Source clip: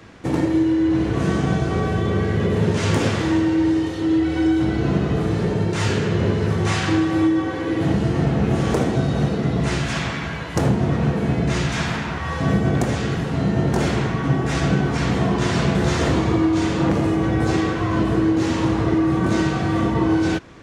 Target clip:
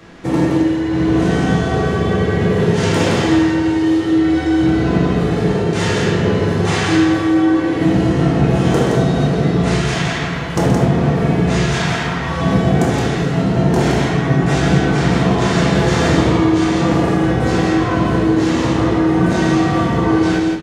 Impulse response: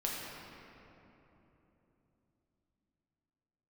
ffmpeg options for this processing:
-filter_complex "[0:a]aecho=1:1:125.4|169.1:0.316|0.562[s0];[1:a]atrim=start_sample=2205,afade=t=out:st=0.13:d=0.01,atrim=end_sample=6174[s1];[s0][s1]afir=irnorm=-1:irlink=0,volume=1.41"

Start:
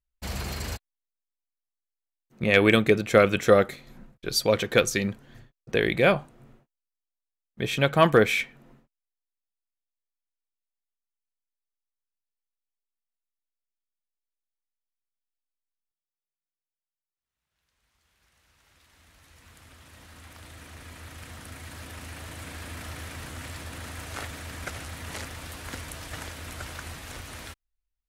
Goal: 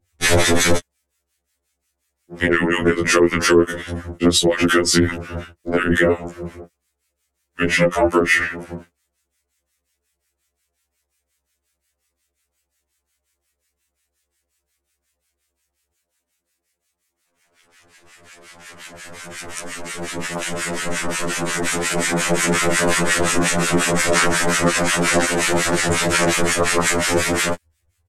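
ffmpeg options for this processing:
-filter_complex "[0:a]acrossover=split=1400[s0][s1];[s0]aeval=exprs='val(0)*(1-1/2+1/2*cos(2*PI*5.6*n/s))':c=same[s2];[s1]aeval=exprs='val(0)*(1-1/2-1/2*cos(2*PI*5.6*n/s))':c=same[s3];[s2][s3]amix=inputs=2:normalize=0,adynamicequalizer=threshold=0.00501:dfrequency=1600:dqfactor=3:tfrequency=1600:tqfactor=3:attack=5:release=100:ratio=0.375:range=3:mode=boostabove:tftype=bell,asetrate=36028,aresample=44100,atempo=1.22405,acompressor=threshold=0.0501:ratio=16,equalizer=f=125:t=o:w=1:g=-9,equalizer=f=250:t=o:w=1:g=10,equalizer=f=500:t=o:w=1:g=9,equalizer=f=2000:t=o:w=1:g=7,equalizer=f=8000:t=o:w=1:g=8,acrossover=split=130[s4][s5];[s5]acompressor=threshold=0.0251:ratio=6[s6];[s4][s6]amix=inputs=2:normalize=0,aeval=exprs='val(0)*sin(2*PI*63*n/s)':c=same,alimiter=level_in=22.4:limit=0.891:release=50:level=0:latency=1,afftfilt=real='re*2*eq(mod(b,4),0)':imag='im*2*eq(mod(b,4),0)':win_size=2048:overlap=0.75"

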